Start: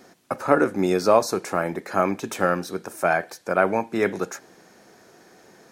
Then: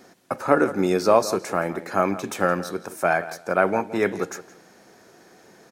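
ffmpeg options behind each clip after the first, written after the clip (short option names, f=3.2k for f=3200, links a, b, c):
-filter_complex "[0:a]asplit=2[a][b];[b]adelay=168,lowpass=f=4k:p=1,volume=-15dB,asplit=2[c][d];[d]adelay=168,lowpass=f=4k:p=1,volume=0.2[e];[a][c][e]amix=inputs=3:normalize=0"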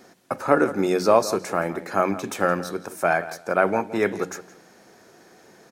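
-af "bandreject=f=91.93:t=h:w=4,bandreject=f=183.86:t=h:w=4,bandreject=f=275.79:t=h:w=4"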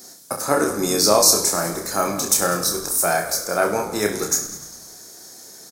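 -filter_complex "[0:a]asplit=2[a][b];[b]asplit=7[c][d][e][f][g][h][i];[c]adelay=100,afreqshift=-49,volume=-13dB[j];[d]adelay=200,afreqshift=-98,volume=-17dB[k];[e]adelay=300,afreqshift=-147,volume=-21dB[l];[f]adelay=400,afreqshift=-196,volume=-25dB[m];[g]adelay=500,afreqshift=-245,volume=-29.1dB[n];[h]adelay=600,afreqshift=-294,volume=-33.1dB[o];[i]adelay=700,afreqshift=-343,volume=-37.1dB[p];[j][k][l][m][n][o][p]amix=inputs=7:normalize=0[q];[a][q]amix=inputs=2:normalize=0,aexciter=amount=8.5:drive=5:freq=4k,asplit=2[r][s];[s]aecho=0:1:29|66:0.596|0.299[t];[r][t]amix=inputs=2:normalize=0,volume=-1.5dB"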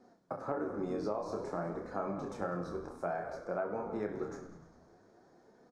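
-af "lowpass=1.1k,flanger=delay=4:depth=8.6:regen=64:speed=0.53:shape=sinusoidal,acompressor=threshold=-26dB:ratio=10,volume=-5.5dB"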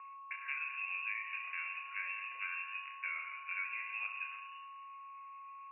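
-af "aemphasis=mode=reproduction:type=50fm,aeval=exprs='val(0)+0.00708*sin(2*PI*1800*n/s)':c=same,lowpass=f=2.5k:t=q:w=0.5098,lowpass=f=2.5k:t=q:w=0.6013,lowpass=f=2.5k:t=q:w=0.9,lowpass=f=2.5k:t=q:w=2.563,afreqshift=-2900,volume=-5dB"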